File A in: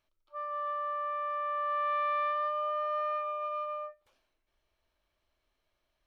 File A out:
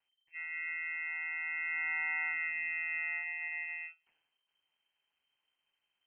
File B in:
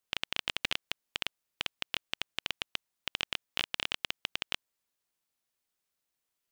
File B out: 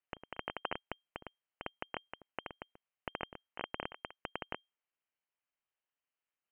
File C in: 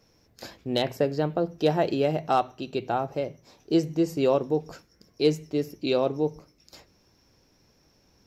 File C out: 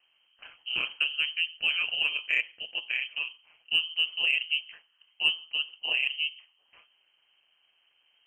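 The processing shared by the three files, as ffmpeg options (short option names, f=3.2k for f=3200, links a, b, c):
-af "aeval=exprs='val(0)*sin(2*PI*81*n/s)':c=same,lowpass=f=2.7k:t=q:w=0.5098,lowpass=f=2.7k:t=q:w=0.6013,lowpass=f=2.7k:t=q:w=0.9,lowpass=f=2.7k:t=q:w=2.563,afreqshift=-3200,acontrast=29,volume=-6.5dB"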